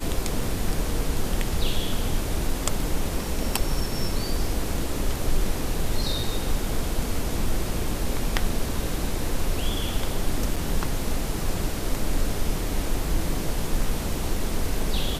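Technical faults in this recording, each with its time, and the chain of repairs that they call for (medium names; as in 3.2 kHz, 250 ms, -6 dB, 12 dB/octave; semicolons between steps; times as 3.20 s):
10.56 s: dropout 4.8 ms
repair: interpolate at 10.56 s, 4.8 ms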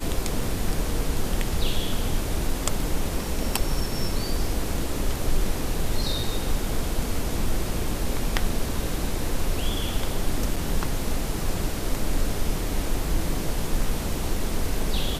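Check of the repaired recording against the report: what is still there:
nothing left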